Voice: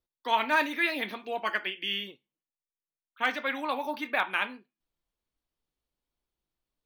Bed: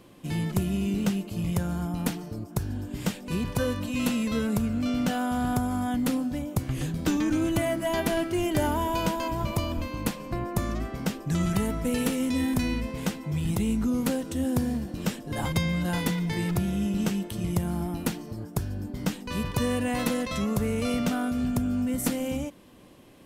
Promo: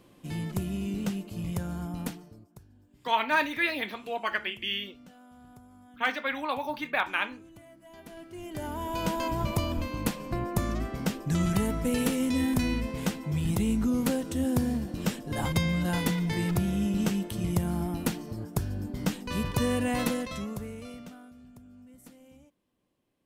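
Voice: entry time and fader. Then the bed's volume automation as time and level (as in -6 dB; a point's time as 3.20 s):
2.80 s, 0.0 dB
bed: 2.02 s -5 dB
2.69 s -26 dB
7.80 s -26 dB
9.19 s -0.5 dB
20.02 s -0.5 dB
21.43 s -25 dB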